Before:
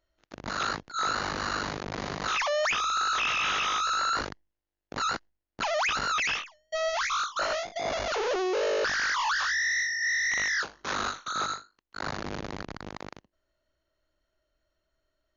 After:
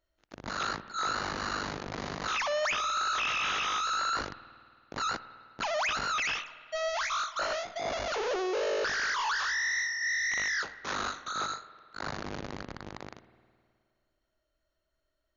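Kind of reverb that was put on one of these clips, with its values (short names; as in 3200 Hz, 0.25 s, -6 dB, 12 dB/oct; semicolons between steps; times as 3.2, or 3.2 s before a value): spring tank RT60 2.1 s, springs 52 ms, chirp 55 ms, DRR 14.5 dB; gain -3 dB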